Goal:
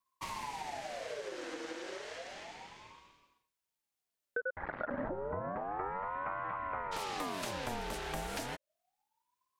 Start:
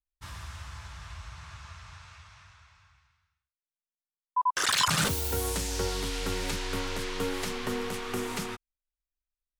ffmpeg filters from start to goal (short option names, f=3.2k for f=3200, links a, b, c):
-filter_complex "[0:a]asplit=3[a][b][c];[a]afade=t=out:st=4.4:d=0.02[d];[b]lowpass=f=1.1k:w=0.5412,lowpass=f=1.1k:w=1.3066,afade=t=in:st=4.4:d=0.02,afade=t=out:st=6.91:d=0.02[e];[c]afade=t=in:st=6.91:d=0.02[f];[d][e][f]amix=inputs=3:normalize=0,acompressor=threshold=-47dB:ratio=3,aeval=exprs='val(0)*sin(2*PI*730*n/s+730*0.45/0.31*sin(2*PI*0.31*n/s))':c=same,volume=9.5dB"